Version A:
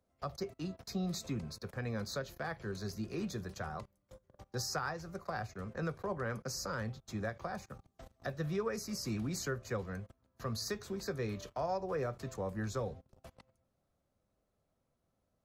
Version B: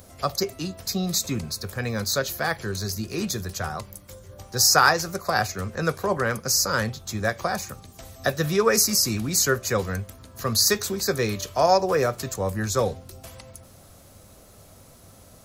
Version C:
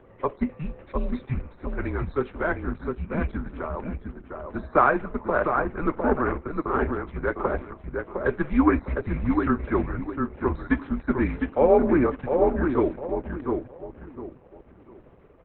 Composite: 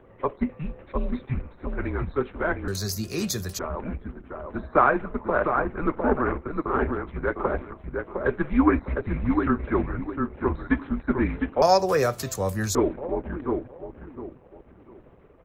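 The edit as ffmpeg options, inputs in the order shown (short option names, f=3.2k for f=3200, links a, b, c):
-filter_complex "[1:a]asplit=2[a][b];[2:a]asplit=3[c][d][e];[c]atrim=end=2.682[f];[a]atrim=start=2.678:end=3.592[g];[d]atrim=start=3.588:end=11.622[h];[b]atrim=start=11.618:end=12.752[i];[e]atrim=start=12.748[j];[f][g]acrossfade=d=0.004:c1=hsin:c2=hsin[k];[k][h]acrossfade=d=0.004:c1=hsin:c2=hsin[l];[l][i]acrossfade=d=0.004:c1=hsin:c2=hsin[m];[m][j]acrossfade=d=0.004:c1=hsin:c2=hsin"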